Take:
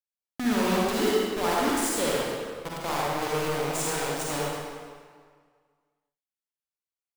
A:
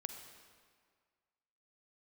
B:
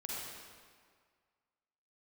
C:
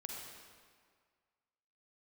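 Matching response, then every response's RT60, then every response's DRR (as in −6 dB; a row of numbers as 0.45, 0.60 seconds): B; 1.8, 1.8, 1.8 seconds; 6.0, −5.5, −1.0 decibels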